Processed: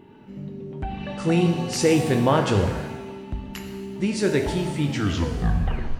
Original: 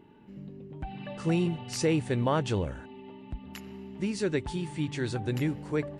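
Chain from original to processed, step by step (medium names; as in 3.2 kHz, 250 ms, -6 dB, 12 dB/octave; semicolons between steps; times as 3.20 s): tape stop on the ending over 1.16 s; pitch-shifted reverb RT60 1.1 s, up +7 st, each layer -8 dB, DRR 4.5 dB; trim +6.5 dB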